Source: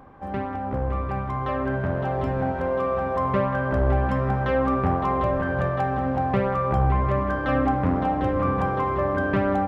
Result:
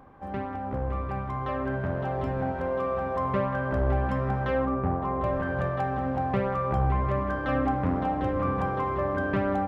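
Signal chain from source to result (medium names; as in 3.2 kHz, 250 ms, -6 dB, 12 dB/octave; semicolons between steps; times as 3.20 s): 4.65–5.24 s: low-pass 1.1 kHz 6 dB/octave; trim -4 dB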